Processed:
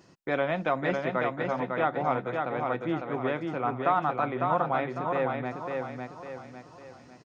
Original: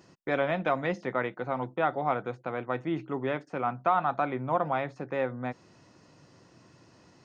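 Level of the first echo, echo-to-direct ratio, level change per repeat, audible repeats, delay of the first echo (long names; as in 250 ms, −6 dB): −4.0 dB, −3.0 dB, −7.5 dB, 5, 552 ms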